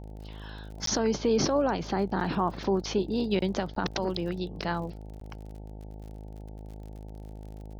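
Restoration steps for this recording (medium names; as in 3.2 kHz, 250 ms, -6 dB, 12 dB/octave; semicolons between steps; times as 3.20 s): de-click; de-hum 52.5 Hz, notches 17; interpolate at 0.86/3.75/5.20 s, 13 ms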